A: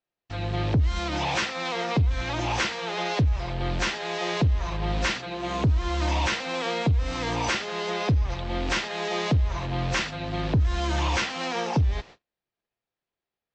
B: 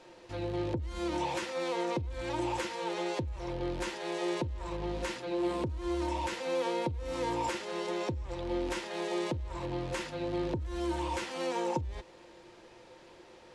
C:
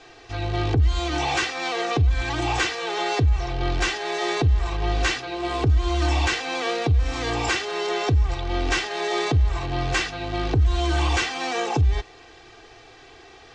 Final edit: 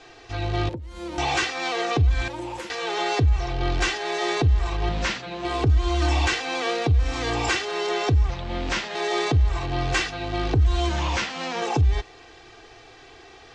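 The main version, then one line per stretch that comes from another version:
C
0.69–1.18 from B
2.28–2.7 from B
4.89–5.45 from A
8.3–8.95 from A
10.89–11.62 from A

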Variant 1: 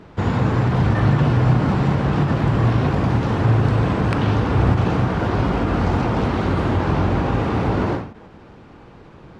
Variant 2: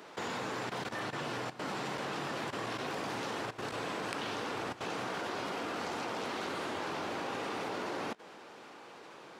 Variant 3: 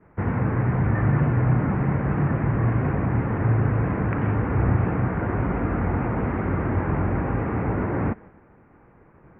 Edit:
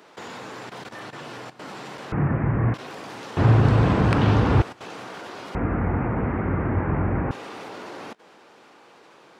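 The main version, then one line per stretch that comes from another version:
2
2.12–2.74 from 3
3.37–4.62 from 1
5.55–7.31 from 3

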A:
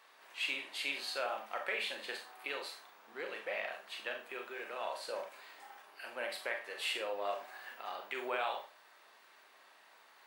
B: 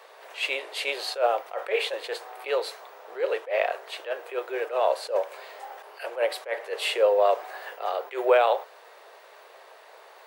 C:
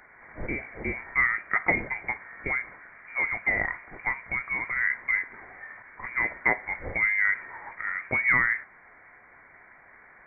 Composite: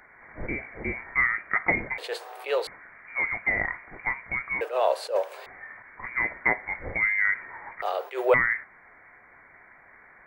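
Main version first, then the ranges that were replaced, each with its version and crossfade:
C
1.98–2.67 from B
4.61–5.46 from B
7.82–8.34 from B
not used: A

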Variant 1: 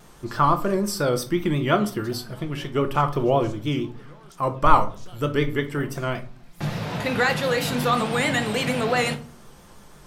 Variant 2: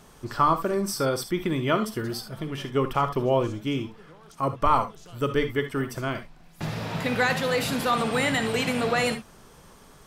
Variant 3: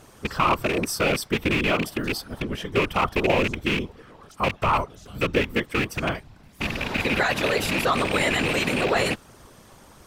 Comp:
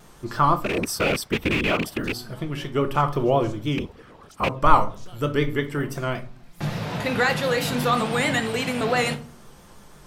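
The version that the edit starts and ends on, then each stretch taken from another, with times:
1
0.64–2.17 from 3, crossfade 0.16 s
3.78–4.49 from 3
8.4–8.81 from 2

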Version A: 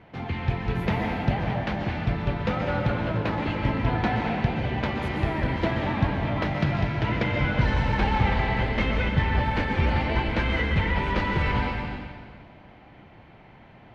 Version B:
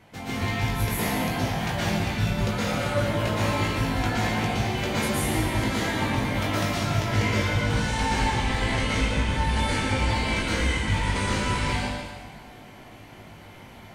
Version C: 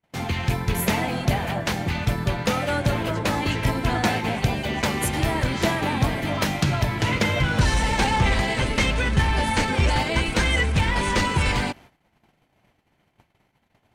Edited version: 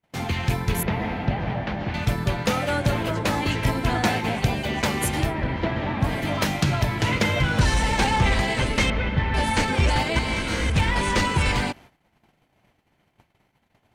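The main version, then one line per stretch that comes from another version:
C
0.83–1.94 from A
5.28–6.06 from A, crossfade 0.16 s
8.9–9.34 from A
10.19–10.7 from B

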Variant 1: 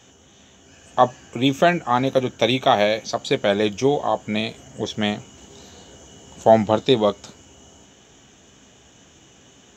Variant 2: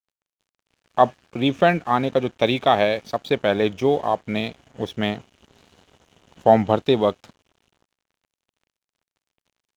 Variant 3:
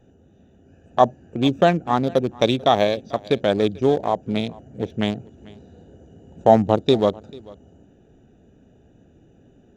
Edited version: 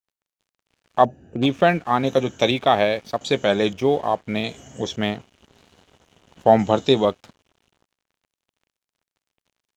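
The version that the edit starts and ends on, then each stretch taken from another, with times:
2
1.05–1.46 from 3
2.04–2.51 from 1
3.21–3.73 from 1
4.44–4.96 from 1
6.59–7.05 from 1

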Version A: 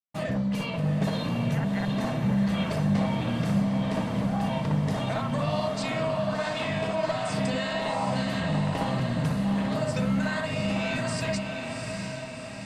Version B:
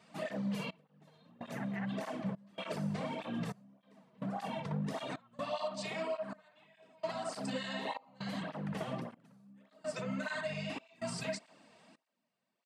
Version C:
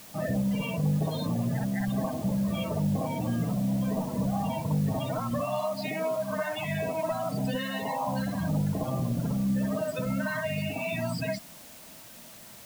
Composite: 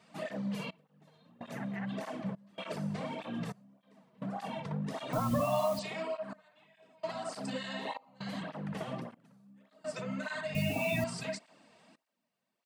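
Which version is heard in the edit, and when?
B
5.13–5.79 from C
10.55–11.04 from C
not used: A

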